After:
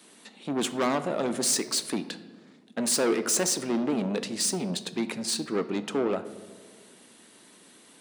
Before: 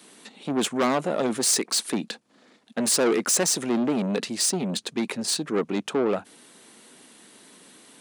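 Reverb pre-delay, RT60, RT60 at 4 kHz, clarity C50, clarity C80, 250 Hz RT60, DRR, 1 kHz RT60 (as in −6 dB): 3 ms, 1.6 s, 0.85 s, 13.5 dB, 15.0 dB, 1.9 s, 10.5 dB, 1.3 s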